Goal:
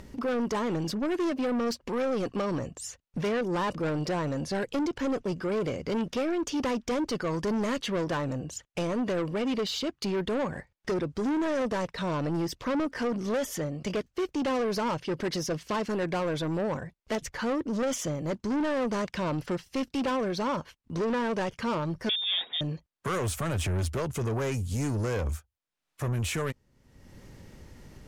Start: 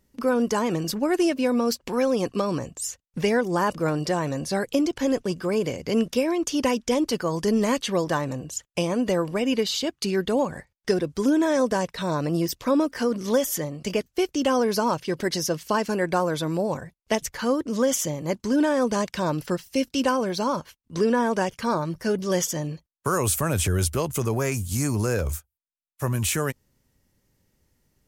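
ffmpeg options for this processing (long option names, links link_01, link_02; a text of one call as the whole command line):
ffmpeg -i in.wav -filter_complex "[0:a]acompressor=mode=upward:threshold=-31dB:ratio=2.5,aemphasis=mode=reproduction:type=50fm,asoftclip=type=tanh:threshold=-25dB,asettb=1/sr,asplit=3[link_01][link_02][link_03];[link_01]atrim=end=22.094[link_04];[link_02]atrim=start=22.09:end=22.61,asetpts=PTS-STARTPTS,afade=type=in:duration=0.004:curve=qsin,afade=type=out:start_time=0.516:duration=0.004:curve=qsin,lowpass=frequency=3200:width_type=q:width=0.5098,lowpass=frequency=3200:width_type=q:width=0.6013,lowpass=frequency=3200:width_type=q:width=0.9,lowpass=frequency=3200:width_type=q:width=2.563,afreqshift=-3800[link_05];[link_03]atrim=start=22.606[link_06];[link_04][link_05]acrossfade=duration=0.004:curve1=hsin:curve2=qsin[link_07];[link_07][link_06]acrossfade=duration=0.004:curve1=qsin:curve2=hsin" out.wav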